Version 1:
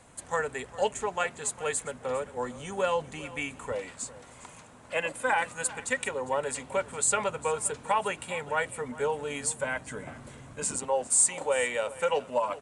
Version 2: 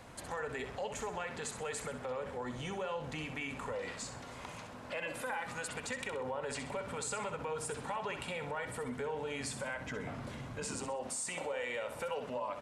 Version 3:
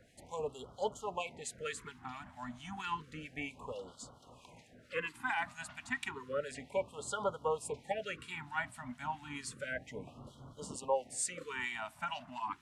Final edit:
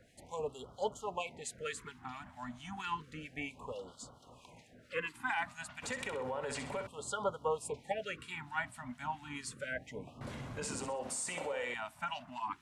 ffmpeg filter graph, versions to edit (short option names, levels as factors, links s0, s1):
-filter_complex "[1:a]asplit=2[s0][s1];[2:a]asplit=3[s2][s3][s4];[s2]atrim=end=5.822[s5];[s0]atrim=start=5.818:end=6.872[s6];[s3]atrim=start=6.868:end=10.212[s7];[s1]atrim=start=10.208:end=11.742[s8];[s4]atrim=start=11.738[s9];[s5][s6]acrossfade=d=0.004:c1=hsin:c2=hsin[s10];[s10][s7]acrossfade=d=0.004:c1=hsin:c2=hsin[s11];[s11][s8]acrossfade=d=0.004:c1=hsin:c2=hsin[s12];[s12][s9]acrossfade=d=0.004:c1=hsin:c2=hsin"